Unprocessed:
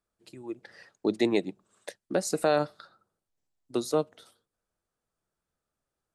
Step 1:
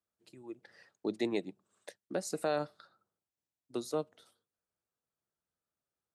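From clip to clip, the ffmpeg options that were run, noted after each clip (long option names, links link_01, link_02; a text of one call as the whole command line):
ffmpeg -i in.wav -af "highpass=71,volume=-8dB" out.wav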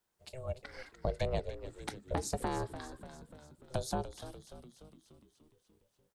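ffmpeg -i in.wav -filter_complex "[0:a]acrossover=split=190[link_01][link_02];[link_02]acompressor=threshold=-43dB:ratio=6[link_03];[link_01][link_03]amix=inputs=2:normalize=0,aeval=exprs='val(0)*sin(2*PI*260*n/s)':channel_layout=same,asplit=8[link_04][link_05][link_06][link_07][link_08][link_09][link_10][link_11];[link_05]adelay=294,afreqshift=-85,volume=-12dB[link_12];[link_06]adelay=588,afreqshift=-170,volume=-16.6dB[link_13];[link_07]adelay=882,afreqshift=-255,volume=-21.2dB[link_14];[link_08]adelay=1176,afreqshift=-340,volume=-25.7dB[link_15];[link_09]adelay=1470,afreqshift=-425,volume=-30.3dB[link_16];[link_10]adelay=1764,afreqshift=-510,volume=-34.9dB[link_17];[link_11]adelay=2058,afreqshift=-595,volume=-39.5dB[link_18];[link_04][link_12][link_13][link_14][link_15][link_16][link_17][link_18]amix=inputs=8:normalize=0,volume=12dB" out.wav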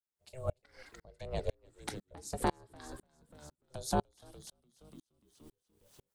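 ffmpeg -i in.wav -af "highshelf=frequency=5700:gain=6,areverse,acompressor=mode=upward:threshold=-52dB:ratio=2.5,areverse,aeval=exprs='val(0)*pow(10,-37*if(lt(mod(-2*n/s,1),2*abs(-2)/1000),1-mod(-2*n/s,1)/(2*abs(-2)/1000),(mod(-2*n/s,1)-2*abs(-2)/1000)/(1-2*abs(-2)/1000))/20)':channel_layout=same,volume=7.5dB" out.wav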